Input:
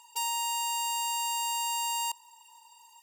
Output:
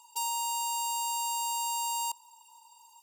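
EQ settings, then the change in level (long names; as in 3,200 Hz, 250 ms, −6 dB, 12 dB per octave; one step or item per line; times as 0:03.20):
phaser with its sweep stopped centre 350 Hz, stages 8
0.0 dB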